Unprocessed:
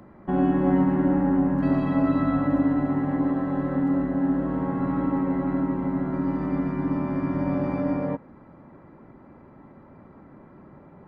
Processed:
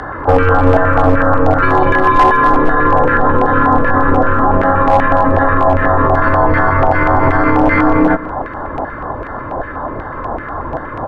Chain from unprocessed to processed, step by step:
on a send at −21 dB: convolution reverb, pre-delay 3 ms
on the sum: auto-filter band-pass saw down 2.6 Hz 990–2,100 Hz
frequency shifter −280 Hz
in parallel at +1.5 dB: downward compressor 6 to 1, threshold −49 dBFS, peak gain reduction 16.5 dB
on the sum: auto-filter notch square 4.1 Hz 750–2,400 Hz
single-tap delay 204 ms −21.5 dB
gain into a clipping stage and back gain 30 dB
speech leveller
boost into a limiter +35.5 dB
highs frequency-modulated by the lows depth 0.13 ms
level −1.5 dB

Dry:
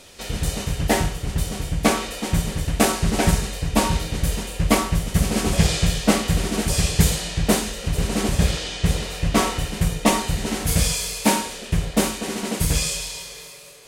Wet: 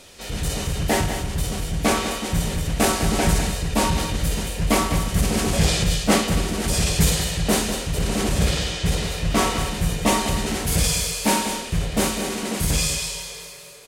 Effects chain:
transient designer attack −4 dB, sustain +3 dB
single-tap delay 200 ms −9 dB
0:05.84–0:06.64: multiband upward and downward expander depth 70%

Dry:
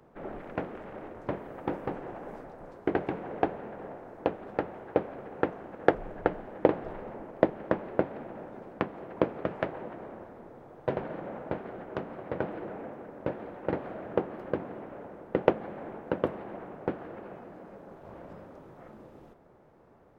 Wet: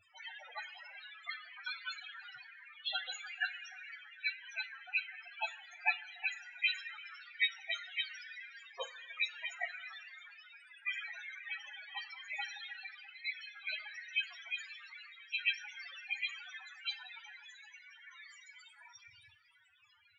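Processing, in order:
frequency axis turned over on the octave scale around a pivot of 1,100 Hz
spectral peaks only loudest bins 8
coupled-rooms reverb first 0.35 s, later 2.3 s, from −18 dB, DRR 12 dB
level +4 dB

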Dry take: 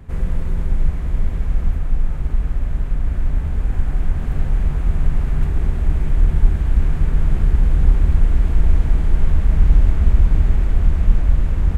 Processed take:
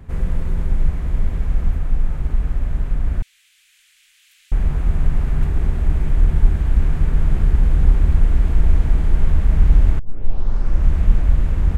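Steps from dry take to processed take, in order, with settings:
0:03.22–0:04.52: inverse Chebyshev high-pass filter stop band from 630 Hz, stop band 70 dB
0:09.99: tape start 0.94 s

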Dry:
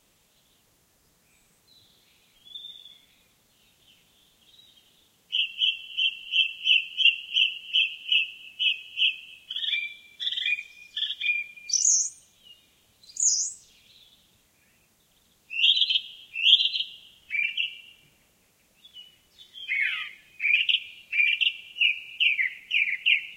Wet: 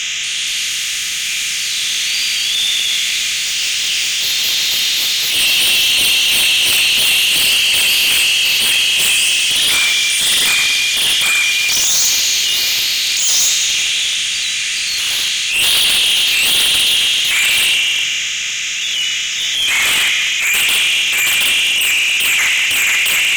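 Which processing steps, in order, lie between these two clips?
compressor on every frequency bin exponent 0.4
delay that swaps between a low-pass and a high-pass 193 ms, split 2,400 Hz, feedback 60%, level −10.5 dB
in parallel at −11 dB: sine wavefolder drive 19 dB, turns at −1.5 dBFS
on the sum: delay with pitch and tempo change per echo 235 ms, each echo +5 semitones, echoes 3, each echo −6 dB
transient designer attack −10 dB, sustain +2 dB
level −1 dB

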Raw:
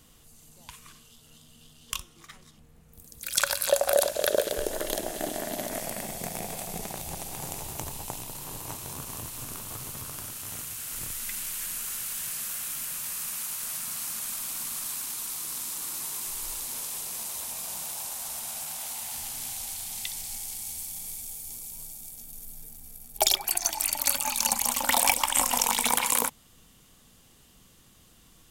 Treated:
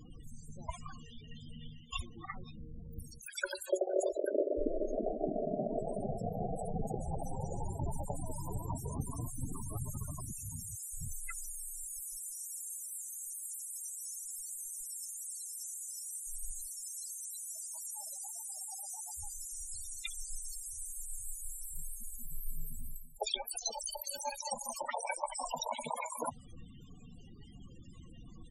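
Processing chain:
reversed playback
downward compressor 8 to 1, threshold −37 dBFS, peak gain reduction 20.5 dB
reversed playback
pitch-shifted copies added −7 semitones −4 dB
spectral peaks only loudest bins 16
level +7.5 dB

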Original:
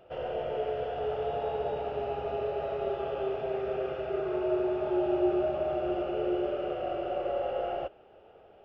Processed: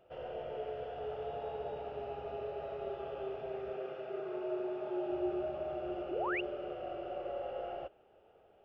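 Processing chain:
0:03.73–0:05.10: high-pass filter 160 Hz 12 dB per octave
0:06.11–0:06.41: sound drawn into the spectrogram rise 320–3,000 Hz −28 dBFS
level −8.5 dB

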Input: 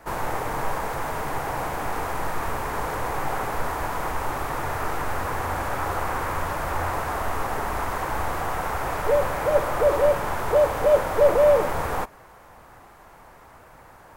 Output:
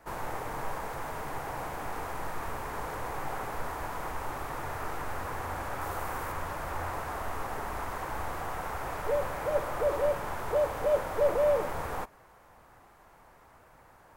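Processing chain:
0:05.81–0:06.32: high-shelf EQ 7,900 Hz +6.5 dB
level −8.5 dB

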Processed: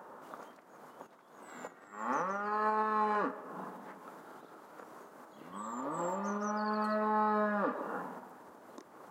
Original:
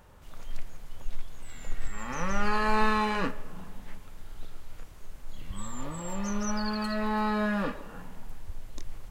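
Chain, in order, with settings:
downward compressor 6 to 1, threshold −35 dBFS, peak gain reduction 16.5 dB
high-pass filter 240 Hz 24 dB per octave
high shelf with overshoot 1,800 Hz −12 dB, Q 1.5
level +8 dB

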